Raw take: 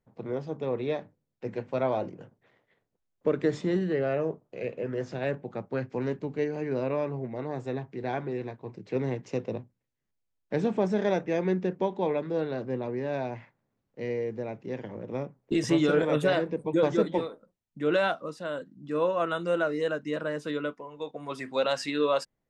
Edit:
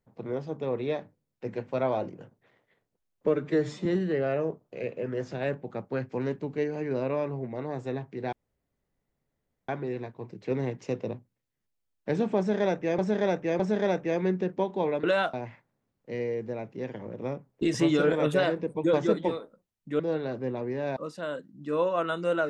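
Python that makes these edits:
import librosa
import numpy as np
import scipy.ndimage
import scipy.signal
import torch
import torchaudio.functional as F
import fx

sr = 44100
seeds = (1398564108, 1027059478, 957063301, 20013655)

y = fx.edit(x, sr, fx.stretch_span(start_s=3.27, length_s=0.39, factor=1.5),
    fx.insert_room_tone(at_s=8.13, length_s=1.36),
    fx.repeat(start_s=10.82, length_s=0.61, count=3),
    fx.swap(start_s=12.26, length_s=0.97, other_s=17.89, other_length_s=0.3), tone=tone)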